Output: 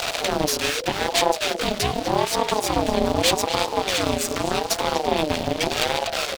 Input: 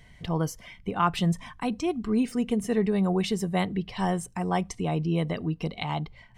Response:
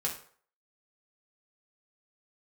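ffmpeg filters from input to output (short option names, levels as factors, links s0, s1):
-filter_complex "[0:a]aeval=exprs='val(0)+0.5*0.0335*sgn(val(0))':c=same,acrossover=split=420|3000[s0][s1][s2];[s1]acompressor=threshold=0.0178:ratio=10[s3];[s0][s3][s2]amix=inputs=3:normalize=0,asplit=2[s4][s5];[s5]asetrate=37084,aresample=44100,atempo=1.18921,volume=0.708[s6];[s4][s6]amix=inputs=2:normalize=0,asplit=2[s7][s8];[s8]adelay=244.9,volume=0.355,highshelf=f=4000:g=-5.51[s9];[s7][s9]amix=inputs=2:normalize=0,asplit=2[s10][s11];[s11]acompressor=threshold=0.0398:ratio=6,volume=1.06[s12];[s10][s12]amix=inputs=2:normalize=0,equalizer=f=3700:t=o:w=1.6:g=13.5,aeval=exprs='1.06*(cos(1*acos(clip(val(0)/1.06,-1,1)))-cos(1*PI/2))+0.119*(cos(5*acos(clip(val(0)/1.06,-1,1)))-cos(5*PI/2))+0.266*(cos(8*acos(clip(val(0)/1.06,-1,1)))-cos(8*PI/2))':c=same,aeval=exprs='val(0)*sin(2*PI*550*n/s+550*0.25/0.83*sin(2*PI*0.83*n/s))':c=same,volume=0.501"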